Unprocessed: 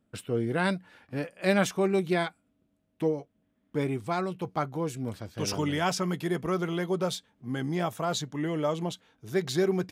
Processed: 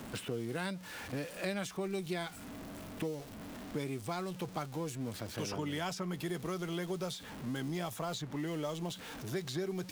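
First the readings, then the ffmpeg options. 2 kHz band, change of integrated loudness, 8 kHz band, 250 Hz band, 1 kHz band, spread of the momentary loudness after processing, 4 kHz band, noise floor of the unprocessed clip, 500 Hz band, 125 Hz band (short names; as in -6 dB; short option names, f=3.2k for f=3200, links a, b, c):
-8.5 dB, -9.0 dB, -6.5 dB, -8.0 dB, -9.5 dB, 6 LU, -6.0 dB, -73 dBFS, -10.0 dB, -7.5 dB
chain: -filter_complex "[0:a]aeval=exprs='val(0)+0.5*0.01*sgn(val(0))':c=same,acrossover=split=130|3200[a][b][c];[a]acompressor=threshold=-51dB:ratio=4[d];[b]acompressor=threshold=-37dB:ratio=4[e];[c]acompressor=threshold=-46dB:ratio=4[f];[d][e][f]amix=inputs=3:normalize=0"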